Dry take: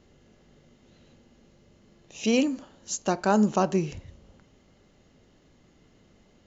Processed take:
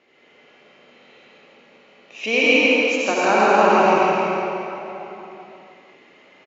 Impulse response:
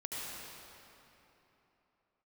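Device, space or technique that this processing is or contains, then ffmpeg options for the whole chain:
station announcement: -filter_complex "[0:a]highpass=450,lowpass=3600,equalizer=frequency=2300:width_type=o:width=0.45:gain=11,aecho=1:1:163.3|212.8:0.891|0.316[link_01];[1:a]atrim=start_sample=2205[link_02];[link_01][link_02]afir=irnorm=-1:irlink=0,volume=8.5dB"

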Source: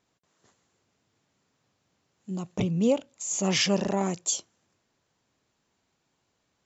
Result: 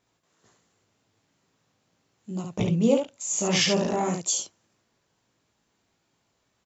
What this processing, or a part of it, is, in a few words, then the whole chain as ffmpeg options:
slapback doubling: -filter_complex "[0:a]asplit=3[link_01][link_02][link_03];[link_02]adelay=18,volume=-4.5dB[link_04];[link_03]adelay=70,volume=-4dB[link_05];[link_01][link_04][link_05]amix=inputs=3:normalize=0"

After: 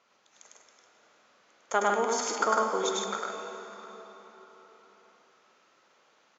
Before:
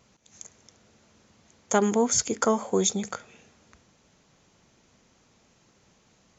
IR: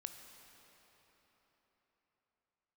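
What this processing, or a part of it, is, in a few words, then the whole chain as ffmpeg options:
station announcement: -filter_complex "[0:a]highpass=480,lowpass=4400,equalizer=frequency=1300:width_type=o:width=0.55:gain=5.5,aecho=1:1:102|151.6:0.891|0.562[link_01];[1:a]atrim=start_sample=2205[link_02];[link_01][link_02]afir=irnorm=-1:irlink=0,volume=1dB"

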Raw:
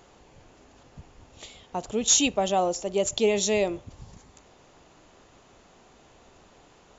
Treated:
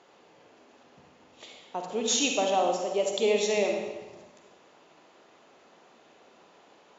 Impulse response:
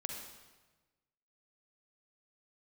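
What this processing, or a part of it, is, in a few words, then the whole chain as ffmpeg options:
supermarket ceiling speaker: -filter_complex "[0:a]highpass=280,lowpass=5100[link_01];[1:a]atrim=start_sample=2205[link_02];[link_01][link_02]afir=irnorm=-1:irlink=0"

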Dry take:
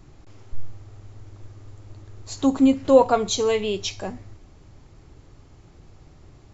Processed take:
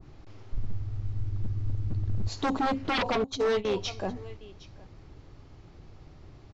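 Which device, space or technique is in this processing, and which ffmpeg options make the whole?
synthesiser wavefolder: -filter_complex "[0:a]asplit=3[link_01][link_02][link_03];[link_01]afade=type=out:start_time=0.57:duration=0.02[link_04];[link_02]asubboost=boost=11:cutoff=220,afade=type=in:start_time=0.57:duration=0.02,afade=type=out:start_time=2.28:duration=0.02[link_05];[link_03]afade=type=in:start_time=2.28:duration=0.02[link_06];[link_04][link_05][link_06]amix=inputs=3:normalize=0,asettb=1/sr,asplit=3[link_07][link_08][link_09];[link_07]atrim=end=3.244[link_10];[link_08]atrim=start=3.24:end=3.65,asetpts=PTS-STARTPTS,afade=type=in:duration=0.004:curve=qsin,afade=type=out:start_time=0.406:duration=0.004:curve=qsin,agate=range=-39dB:threshold=-23dB:ratio=16:detection=peak[link_11];[link_09]atrim=start=3.646[link_12];[link_10][link_11]acrossfade=duration=0.004:curve1=hsin:curve2=qsin[link_13];[link_13][link_12]acrossfade=duration=0.004:curve1=qsin:curve2=hsin,aecho=1:1:761:0.0708,aeval=exprs='0.106*(abs(mod(val(0)/0.106+3,4)-2)-1)':channel_layout=same,lowpass=frequency=5600:width=0.5412,lowpass=frequency=5600:width=1.3066,adynamicequalizer=threshold=0.01:dfrequency=1500:dqfactor=0.7:tfrequency=1500:tqfactor=0.7:attack=5:release=100:ratio=0.375:range=2:mode=cutabove:tftype=highshelf,volume=-1dB"

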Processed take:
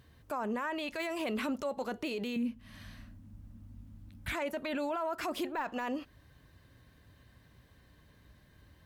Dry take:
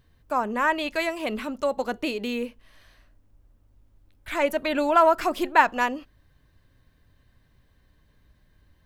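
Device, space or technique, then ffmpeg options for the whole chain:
podcast mastering chain: -filter_complex "[0:a]asettb=1/sr,asplit=3[link_01][link_02][link_03];[link_01]atrim=end=2.364[link_04];[link_02]atrim=start=2.36:end=4.33,asetpts=PTS-STARTPTS,afade=type=in:duration=0.004:curve=qsin,afade=type=out:start_time=1.966:duration=0.004:curve=qsin,lowshelf=frequency=300:width_type=q:width=3:gain=9.5[link_05];[link_03]atrim=start=4.326[link_06];[link_04][link_05]acrossfade=duration=0.004:curve1=hsin:curve2=qsin[link_07];[link_07][link_06]acrossfade=duration=0.004:curve1=qsin:curve2=hsin,highpass=64,deesser=0.75,acompressor=threshold=-34dB:ratio=2.5,alimiter=level_in=6.5dB:limit=-24dB:level=0:latency=1:release=10,volume=-6.5dB,volume=4dB" -ar 44100 -c:a libmp3lame -b:a 96k

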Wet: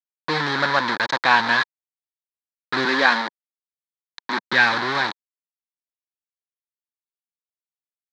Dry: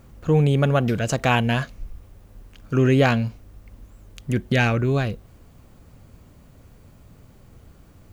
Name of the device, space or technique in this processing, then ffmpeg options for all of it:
hand-held game console: -filter_complex "[0:a]acrusher=bits=3:mix=0:aa=0.000001,highpass=420,equalizer=frequency=440:width_type=q:width=4:gain=-9,equalizer=frequency=650:width_type=q:width=4:gain=-8,equalizer=frequency=960:width_type=q:width=4:gain=8,equalizer=frequency=1700:width_type=q:width=4:gain=9,equalizer=frequency=2800:width_type=q:width=4:gain=-10,equalizer=frequency=4000:width_type=q:width=4:gain=9,lowpass=frequency=4400:width=0.5412,lowpass=frequency=4400:width=1.3066,asettb=1/sr,asplit=3[link_01][link_02][link_03];[link_01]atrim=end=2.854[link_04];[link_02]atrim=start=2.85:end=4.53,asetpts=PTS-STARTPTS,afade=type=in:duration=0.004:curve=qsin,afade=type=out:start_time=1.676:duration=0.004:curve=qsin,highpass=frequency=190:width=0.5412,highpass=frequency=190:width=1.3066[link_05];[link_03]atrim=start=4.526[link_06];[link_04][link_05]acrossfade=duration=0.004:curve1=hsin:curve2=qsin[link_07];[link_07][link_06]acrossfade=duration=0.004:curve1=qsin:curve2=hsin,volume=2.5dB"

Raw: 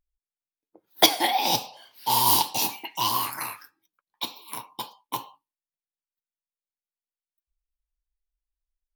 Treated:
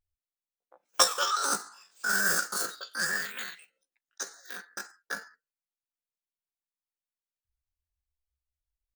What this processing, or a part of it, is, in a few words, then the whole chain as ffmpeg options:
chipmunk voice: -af "asetrate=72056,aresample=44100,atempo=0.612027,volume=-4dB"

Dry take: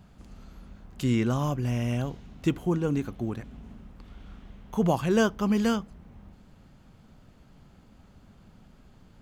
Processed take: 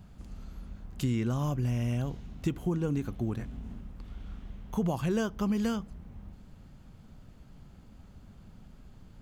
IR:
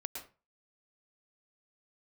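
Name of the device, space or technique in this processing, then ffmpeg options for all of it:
ASMR close-microphone chain: -filter_complex "[0:a]asettb=1/sr,asplit=3[link_01][link_02][link_03];[link_01]atrim=end=3.374[link_04];[link_02]atrim=start=3.37:end=3.81,asetpts=PTS-STARTPTS,afade=type=in:duration=0.004:curve=qsin,afade=type=out:start_time=0.436:duration=0.004:curve=qsin,asplit=2[link_05][link_06];[link_06]adelay=23,volume=-6dB[link_07];[link_05][link_07]amix=inputs=2:normalize=0,atrim=end_sample=19404[link_08];[link_03]atrim=start=3.806[link_09];[link_04][link_08]acrossfade=duration=0.004:curve1=hsin:curve2=qsin[link_10];[link_10][link_09]acrossfade=duration=0.004:curve1=qsin:curve2=hsin,lowshelf=frequency=170:gain=7.5,acompressor=threshold=-23dB:ratio=6,highshelf=frequency=6200:gain=4,volume=-2.5dB"

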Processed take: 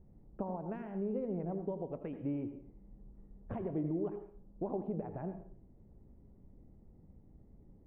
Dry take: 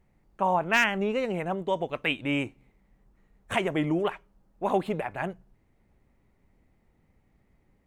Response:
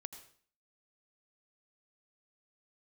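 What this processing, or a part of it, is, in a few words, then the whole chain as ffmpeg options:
television next door: -filter_complex "[0:a]acompressor=threshold=-41dB:ratio=4,lowpass=450[link_01];[1:a]atrim=start_sample=2205[link_02];[link_01][link_02]afir=irnorm=-1:irlink=0,volume=11.5dB"

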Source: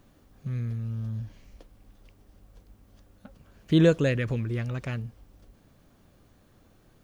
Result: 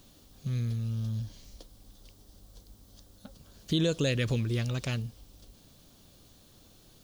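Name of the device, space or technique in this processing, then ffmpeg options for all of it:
over-bright horn tweeter: -filter_complex "[0:a]highshelf=frequency=2700:width_type=q:width=1.5:gain=10,alimiter=limit=-18dB:level=0:latency=1:release=182,asettb=1/sr,asplit=3[link_01][link_02][link_03];[link_01]atrim=end=1.224[link_04];[link_02]atrim=start=1.22:end=3.74,asetpts=PTS-STARTPTS,afade=type=in:duration=0.004:curve=qsin,afade=type=out:start_time=2.516:duration=0.004:curve=qsin,equalizer=frequency=2600:width=2.6:gain=-5.5[link_05];[link_03]atrim=start=3.736[link_06];[link_04][link_05]acrossfade=duration=0.004:curve1=hsin:curve2=qsin[link_07];[link_07][link_06]acrossfade=duration=0.004:curve1=qsin:curve2=hsin"

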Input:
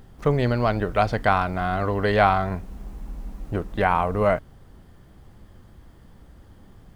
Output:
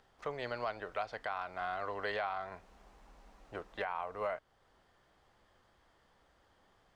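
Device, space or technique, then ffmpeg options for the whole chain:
DJ mixer with the lows and highs turned down: -filter_complex "[0:a]acrossover=split=480 7700:gain=0.112 1 0.158[link_01][link_02][link_03];[link_01][link_02][link_03]amix=inputs=3:normalize=0,alimiter=limit=-18dB:level=0:latency=1:release=383,volume=-8dB"

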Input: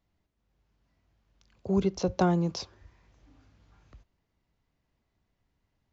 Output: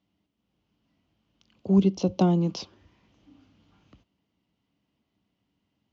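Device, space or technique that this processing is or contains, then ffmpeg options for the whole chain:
car door speaker: -filter_complex "[0:a]highpass=96,equalizer=frequency=200:width_type=q:width=4:gain=8,equalizer=frequency=290:width_type=q:width=4:gain=8,equalizer=frequency=1700:width_type=q:width=4:gain=-5,equalizer=frequency=3000:width_type=q:width=4:gain=9,lowpass=frequency=6600:width=0.5412,lowpass=frequency=6600:width=1.3066,asettb=1/sr,asplit=3[link_01][link_02][link_03];[link_01]atrim=end=1.784[link_04];[link_02]atrim=start=1.78:end=2.41,asetpts=PTS-STARTPTS,afade=type=in:duration=0.004:curve=qsin,afade=type=out:start_time=0.626:duration=0.004:curve=qsin,equalizer=frequency=1600:width_type=o:width=0.88:gain=-8[link_05];[link_03]atrim=start=2.406[link_06];[link_04][link_05]acrossfade=duration=0.004:curve1=hsin:curve2=qsin[link_07];[link_07][link_06]acrossfade=duration=0.004:curve1=qsin:curve2=hsin"

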